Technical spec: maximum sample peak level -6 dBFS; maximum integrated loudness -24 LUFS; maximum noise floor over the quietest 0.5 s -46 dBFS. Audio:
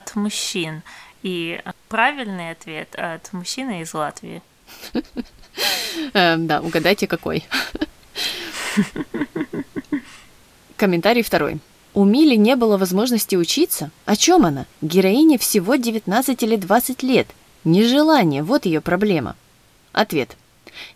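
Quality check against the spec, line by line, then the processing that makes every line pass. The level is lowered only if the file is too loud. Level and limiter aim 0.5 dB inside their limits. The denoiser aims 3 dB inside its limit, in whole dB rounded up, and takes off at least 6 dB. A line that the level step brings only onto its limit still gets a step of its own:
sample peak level -2.5 dBFS: fail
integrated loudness -19.0 LUFS: fail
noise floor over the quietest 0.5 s -53 dBFS: pass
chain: trim -5.5 dB

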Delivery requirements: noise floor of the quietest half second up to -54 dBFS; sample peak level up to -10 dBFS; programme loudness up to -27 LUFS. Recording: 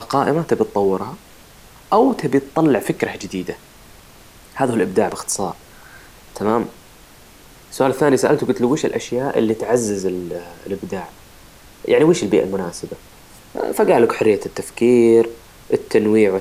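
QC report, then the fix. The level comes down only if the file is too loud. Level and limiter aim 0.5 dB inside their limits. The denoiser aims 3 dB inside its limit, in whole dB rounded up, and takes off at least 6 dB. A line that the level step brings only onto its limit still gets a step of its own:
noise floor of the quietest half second -45 dBFS: fail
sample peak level -3.0 dBFS: fail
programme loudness -18.0 LUFS: fail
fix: trim -9.5 dB

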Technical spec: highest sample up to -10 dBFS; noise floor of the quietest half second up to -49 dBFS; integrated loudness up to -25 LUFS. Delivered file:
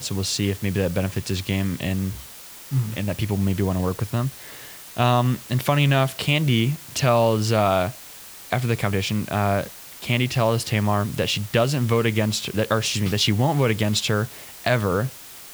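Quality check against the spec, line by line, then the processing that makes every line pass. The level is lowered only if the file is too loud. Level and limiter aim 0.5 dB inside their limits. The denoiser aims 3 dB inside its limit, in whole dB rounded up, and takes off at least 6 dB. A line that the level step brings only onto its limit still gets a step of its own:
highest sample -4.5 dBFS: fail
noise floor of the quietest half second -41 dBFS: fail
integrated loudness -22.5 LUFS: fail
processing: noise reduction 8 dB, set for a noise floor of -41 dBFS; trim -3 dB; peak limiter -10.5 dBFS

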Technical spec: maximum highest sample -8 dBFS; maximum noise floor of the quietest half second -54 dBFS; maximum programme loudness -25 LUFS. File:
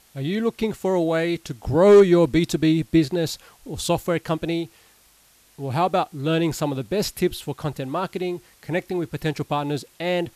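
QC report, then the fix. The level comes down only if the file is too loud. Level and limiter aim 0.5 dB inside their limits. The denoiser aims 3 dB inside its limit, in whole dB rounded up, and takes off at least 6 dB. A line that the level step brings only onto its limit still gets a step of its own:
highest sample -6.5 dBFS: fail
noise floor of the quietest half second -57 dBFS: pass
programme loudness -22.5 LUFS: fail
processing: trim -3 dB

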